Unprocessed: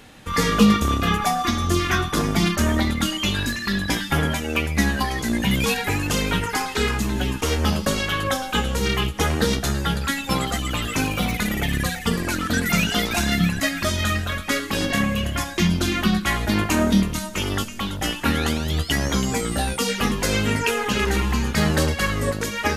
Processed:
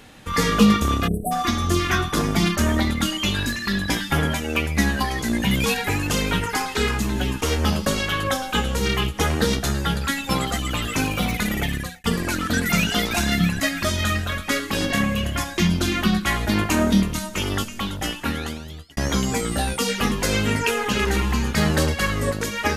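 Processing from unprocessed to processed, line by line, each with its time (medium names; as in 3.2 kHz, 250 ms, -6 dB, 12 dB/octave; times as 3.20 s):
1.07–1.32 s: spectral selection erased 740–7800 Hz
11.62–12.04 s: fade out
17.84–18.97 s: fade out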